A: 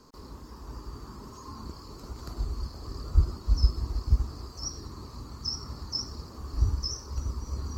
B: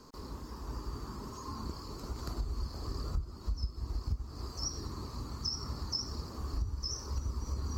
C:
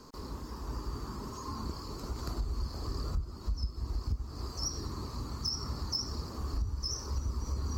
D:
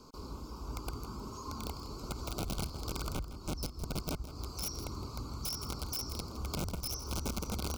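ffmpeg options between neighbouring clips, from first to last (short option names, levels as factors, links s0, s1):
-af "acompressor=threshold=0.0251:ratio=8,volume=1.12"
-af "asoftclip=type=tanh:threshold=0.0562,volume=1.33"
-af "aeval=exprs='(mod(26.6*val(0)+1,2)-1)/26.6':c=same,asuperstop=centerf=1800:order=20:qfactor=3.1,aecho=1:1:163:0.2,volume=0.75"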